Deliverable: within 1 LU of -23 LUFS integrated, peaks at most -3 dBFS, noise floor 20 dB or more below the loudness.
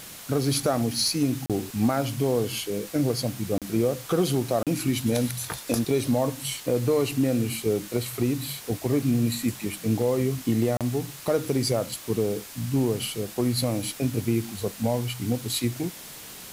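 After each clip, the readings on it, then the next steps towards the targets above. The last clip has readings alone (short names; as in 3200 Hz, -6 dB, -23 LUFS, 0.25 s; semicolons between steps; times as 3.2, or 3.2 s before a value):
dropouts 4; longest dropout 37 ms; noise floor -42 dBFS; noise floor target -47 dBFS; loudness -26.5 LUFS; peak -11.0 dBFS; loudness target -23.0 LUFS
-> interpolate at 1.46/3.58/4.63/10.77, 37 ms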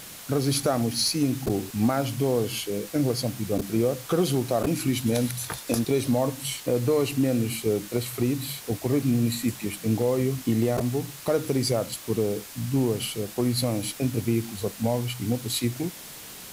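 dropouts 0; noise floor -42 dBFS; noise floor target -46 dBFS
-> denoiser 6 dB, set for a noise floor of -42 dBFS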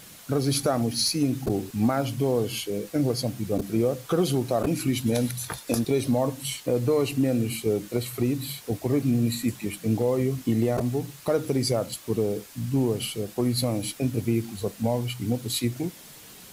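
noise floor -47 dBFS; loudness -26.5 LUFS; peak -11.0 dBFS; loudness target -23.0 LUFS
-> gain +3.5 dB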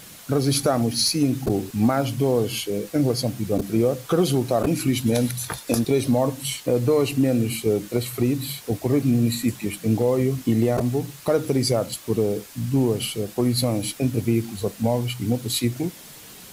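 loudness -23.0 LUFS; peak -7.5 dBFS; noise floor -43 dBFS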